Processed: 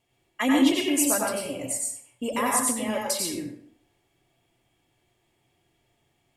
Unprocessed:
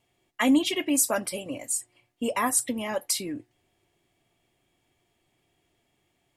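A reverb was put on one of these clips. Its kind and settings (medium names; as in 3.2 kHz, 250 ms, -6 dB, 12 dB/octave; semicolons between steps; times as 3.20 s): plate-style reverb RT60 0.61 s, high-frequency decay 0.7×, pre-delay 80 ms, DRR -1.5 dB; trim -2 dB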